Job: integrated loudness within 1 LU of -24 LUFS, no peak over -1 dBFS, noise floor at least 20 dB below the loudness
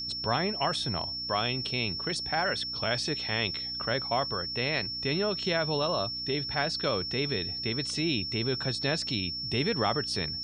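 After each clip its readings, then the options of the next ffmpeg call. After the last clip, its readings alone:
hum 60 Hz; highest harmonic 300 Hz; hum level -47 dBFS; steady tone 5.4 kHz; tone level -33 dBFS; loudness -29.0 LUFS; peak level -13.5 dBFS; loudness target -24.0 LUFS
-> -af "bandreject=f=60:t=h:w=4,bandreject=f=120:t=h:w=4,bandreject=f=180:t=h:w=4,bandreject=f=240:t=h:w=4,bandreject=f=300:t=h:w=4"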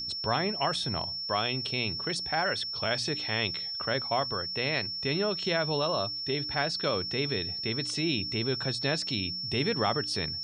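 hum not found; steady tone 5.4 kHz; tone level -33 dBFS
-> -af "bandreject=f=5400:w=30"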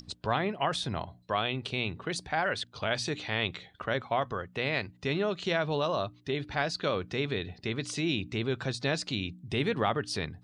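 steady tone not found; loudness -31.5 LUFS; peak level -14.0 dBFS; loudness target -24.0 LUFS
-> -af "volume=2.37"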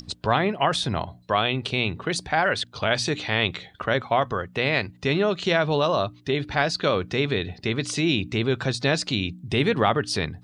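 loudness -24.0 LUFS; peak level -6.5 dBFS; noise floor -51 dBFS

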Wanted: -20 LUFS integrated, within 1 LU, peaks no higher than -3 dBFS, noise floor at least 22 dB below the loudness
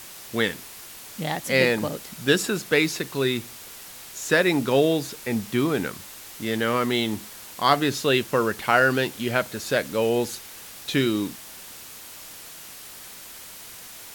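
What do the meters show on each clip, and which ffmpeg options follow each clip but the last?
noise floor -42 dBFS; noise floor target -46 dBFS; loudness -24.0 LUFS; peak level -4.0 dBFS; loudness target -20.0 LUFS
-> -af "afftdn=nr=6:nf=-42"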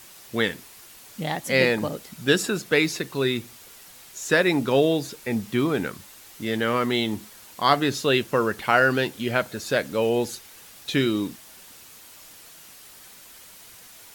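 noise floor -47 dBFS; loudness -24.0 LUFS; peak level -4.0 dBFS; loudness target -20.0 LUFS
-> -af "volume=1.58,alimiter=limit=0.708:level=0:latency=1"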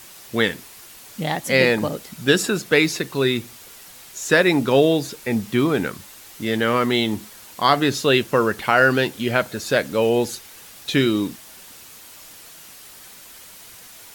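loudness -20.0 LUFS; peak level -3.0 dBFS; noise floor -43 dBFS

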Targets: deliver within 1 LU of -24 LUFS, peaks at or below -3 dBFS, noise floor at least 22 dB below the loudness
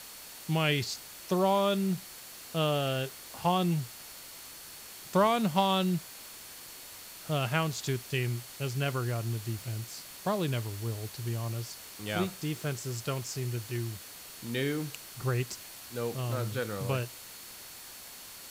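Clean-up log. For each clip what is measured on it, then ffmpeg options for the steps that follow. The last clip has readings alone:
steady tone 4.4 kHz; tone level -56 dBFS; noise floor -47 dBFS; noise floor target -54 dBFS; loudness -32.0 LUFS; peak level -12.5 dBFS; loudness target -24.0 LUFS
-> -af "bandreject=f=4400:w=30"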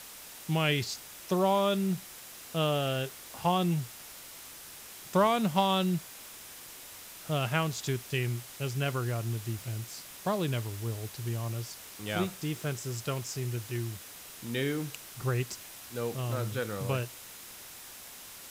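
steady tone not found; noise floor -48 dBFS; noise floor target -54 dBFS
-> -af "afftdn=nr=6:nf=-48"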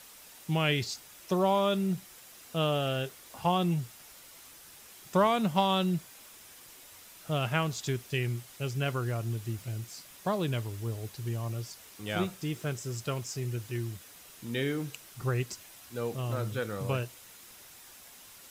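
noise floor -52 dBFS; noise floor target -54 dBFS
-> -af "afftdn=nr=6:nf=-52"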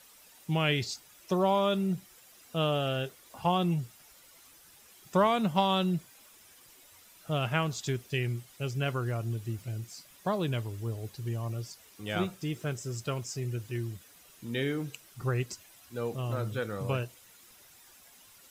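noise floor -57 dBFS; loudness -32.0 LUFS; peak level -12.5 dBFS; loudness target -24.0 LUFS
-> -af "volume=2.51"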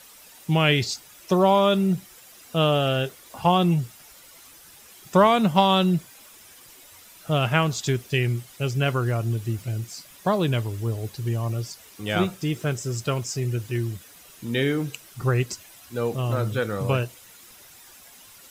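loudness -24.0 LUFS; peak level -4.5 dBFS; noise floor -49 dBFS

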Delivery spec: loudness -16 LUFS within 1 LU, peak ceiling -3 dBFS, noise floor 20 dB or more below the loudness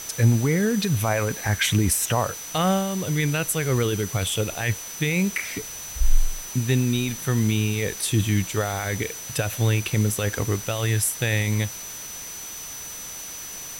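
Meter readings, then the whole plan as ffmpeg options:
steady tone 6 kHz; tone level -36 dBFS; noise floor -36 dBFS; noise floor target -45 dBFS; loudness -24.5 LUFS; peak level -6.5 dBFS; loudness target -16.0 LUFS
-> -af "bandreject=f=6000:w=30"
-af "afftdn=nr=9:nf=-36"
-af "volume=2.66,alimiter=limit=0.708:level=0:latency=1"

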